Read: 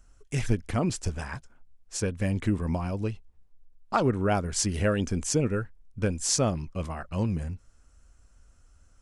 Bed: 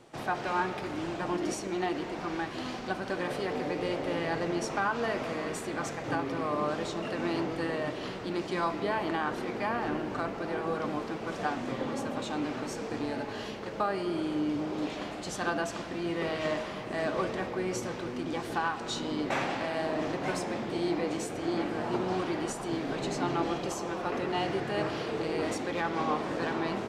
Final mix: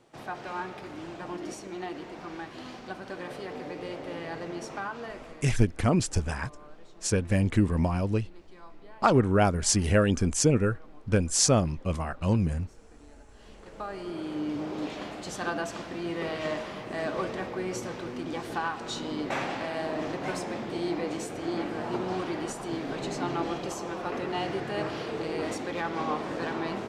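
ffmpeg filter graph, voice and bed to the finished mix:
ffmpeg -i stem1.wav -i stem2.wav -filter_complex "[0:a]adelay=5100,volume=3dB[link_01];[1:a]volume=15dB,afade=type=out:start_time=4.81:duration=0.76:silence=0.16788,afade=type=in:start_time=13.34:duration=1.29:silence=0.0944061[link_02];[link_01][link_02]amix=inputs=2:normalize=0" out.wav

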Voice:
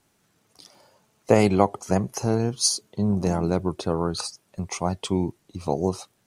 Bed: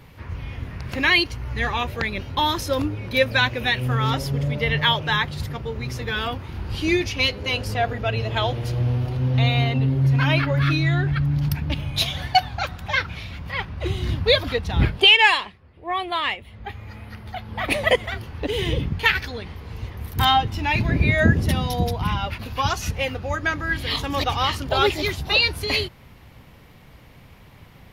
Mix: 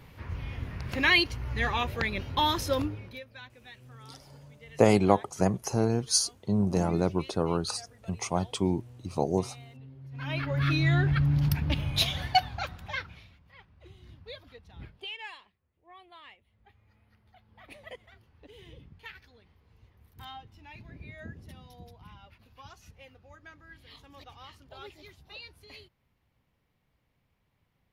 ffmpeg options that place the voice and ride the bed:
ffmpeg -i stem1.wav -i stem2.wav -filter_complex "[0:a]adelay=3500,volume=-3dB[link_01];[1:a]volume=20.5dB,afade=type=out:start_time=2.73:duration=0.48:silence=0.0668344,afade=type=in:start_time=10.11:duration=0.85:silence=0.0562341,afade=type=out:start_time=11.91:duration=1.48:silence=0.0630957[link_02];[link_01][link_02]amix=inputs=2:normalize=0" out.wav

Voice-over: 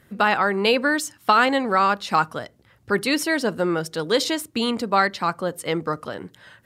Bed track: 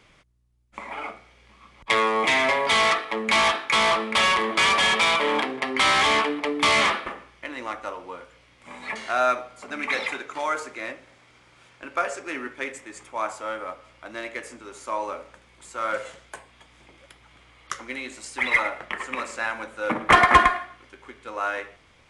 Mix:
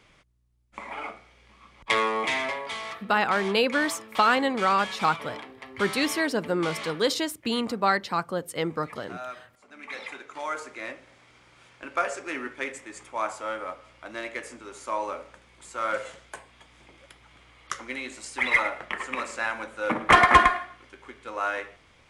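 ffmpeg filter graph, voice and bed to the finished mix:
ffmpeg -i stem1.wav -i stem2.wav -filter_complex "[0:a]adelay=2900,volume=-4dB[link_01];[1:a]volume=13.5dB,afade=type=out:start_time=1.89:duration=0.91:silence=0.188365,afade=type=in:start_time=9.73:duration=1.49:silence=0.16788[link_02];[link_01][link_02]amix=inputs=2:normalize=0" out.wav

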